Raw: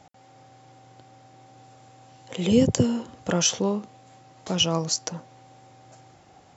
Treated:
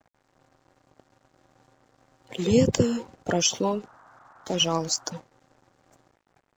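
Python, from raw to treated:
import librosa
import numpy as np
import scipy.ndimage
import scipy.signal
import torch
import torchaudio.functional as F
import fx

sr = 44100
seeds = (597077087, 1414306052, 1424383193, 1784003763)

y = fx.spec_quant(x, sr, step_db=30)
y = np.sign(y) * np.maximum(np.abs(y) - 10.0 ** (-50.5 / 20.0), 0.0)
y = fx.dmg_noise_band(y, sr, seeds[0], low_hz=660.0, high_hz=1500.0, level_db=-54.0, at=(3.83, 5.15), fade=0.02)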